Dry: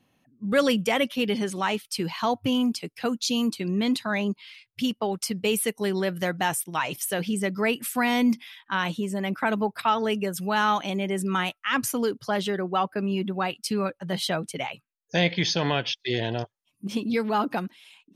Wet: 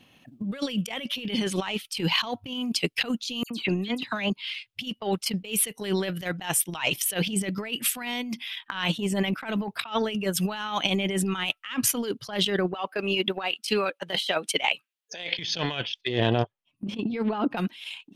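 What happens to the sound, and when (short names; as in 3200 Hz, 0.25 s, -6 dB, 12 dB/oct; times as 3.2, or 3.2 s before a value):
3.43–4.3 dispersion lows, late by 74 ms, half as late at 3000 Hz
12.74–15.39 HPF 390 Hz
16.01–17.57 LPF 1200 Hz 6 dB/oct
whole clip: bell 3000 Hz +9 dB 0.94 oct; transient shaper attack +11 dB, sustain -6 dB; negative-ratio compressor -29 dBFS, ratio -1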